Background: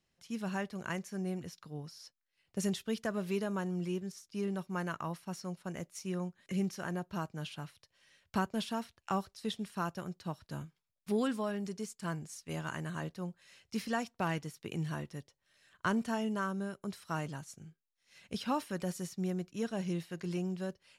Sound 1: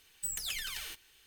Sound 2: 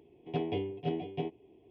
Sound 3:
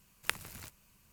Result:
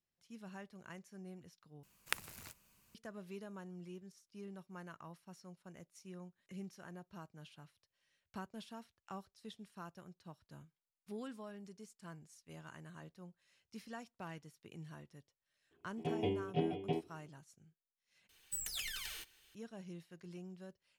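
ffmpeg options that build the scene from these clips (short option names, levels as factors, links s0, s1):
-filter_complex "[0:a]volume=0.2[s0];[3:a]lowshelf=f=130:g=-6.5[s1];[2:a]dynaudnorm=f=110:g=7:m=3.76[s2];[s0]asplit=3[s3][s4][s5];[s3]atrim=end=1.834[s6];[s1]atrim=end=1.12,asetpts=PTS-STARTPTS,volume=0.631[s7];[s4]atrim=start=2.946:end=18.294[s8];[1:a]atrim=end=1.26,asetpts=PTS-STARTPTS,volume=0.596[s9];[s5]atrim=start=19.546[s10];[s2]atrim=end=1.7,asetpts=PTS-STARTPTS,volume=0.224,afade=t=in:d=0.004:c=hsin,afade=t=out:st=1.696:d=0.004:c=hsin,adelay=15710[s11];[s6][s7]acrossfade=d=0.004:c1=hsin:c2=hsin[s12];[s12][s8]acrossfade=d=0.004:c1=hsin:c2=hsin[s13];[s13][s9]acrossfade=d=0.004:c1=hsin:c2=hsin[s14];[s14][s10]acrossfade=d=0.004:c1=hsin:c2=hsin[s15];[s15][s11]amix=inputs=2:normalize=0"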